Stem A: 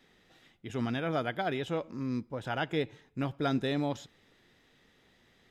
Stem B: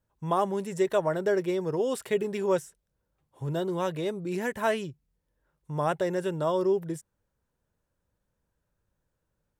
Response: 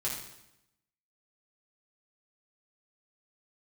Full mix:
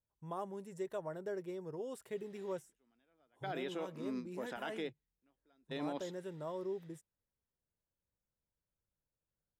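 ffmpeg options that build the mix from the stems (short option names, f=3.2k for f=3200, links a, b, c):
-filter_complex "[0:a]highpass=f=220:w=0.5412,highpass=f=220:w=1.3066,adelay=2050,volume=-4.5dB[a];[1:a]equalizer=f=3.1k:w=0.55:g=-4,volume=-15dB,asplit=2[b][c];[c]apad=whole_len=333348[d];[a][d]sidechaingate=range=-38dB:threshold=-50dB:ratio=16:detection=peak[e];[e][b]amix=inputs=2:normalize=0,alimiter=level_in=6.5dB:limit=-24dB:level=0:latency=1:release=50,volume=-6.5dB"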